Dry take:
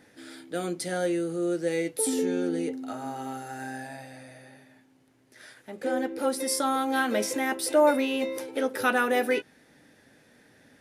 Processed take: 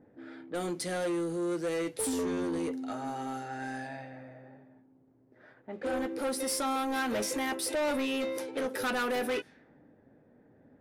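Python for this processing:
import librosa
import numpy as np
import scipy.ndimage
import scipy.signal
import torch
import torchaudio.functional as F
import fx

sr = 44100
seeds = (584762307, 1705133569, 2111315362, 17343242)

y = 10.0 ** (-27.5 / 20.0) * np.tanh(x / 10.0 ** (-27.5 / 20.0))
y = fx.env_lowpass(y, sr, base_hz=590.0, full_db=-31.5)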